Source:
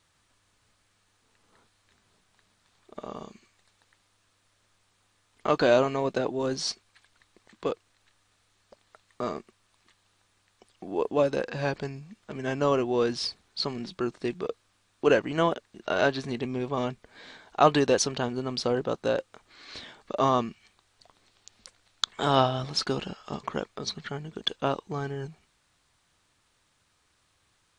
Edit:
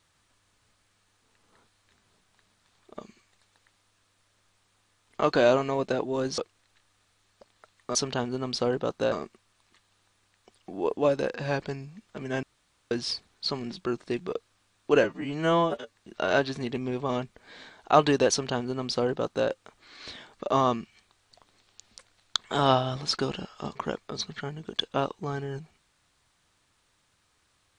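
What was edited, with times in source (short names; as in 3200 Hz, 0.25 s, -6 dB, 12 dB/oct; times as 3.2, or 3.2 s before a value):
3.01–3.27 cut
6.64–7.69 cut
12.57–13.05 room tone
15.18–15.64 stretch 2×
17.99–19.16 copy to 9.26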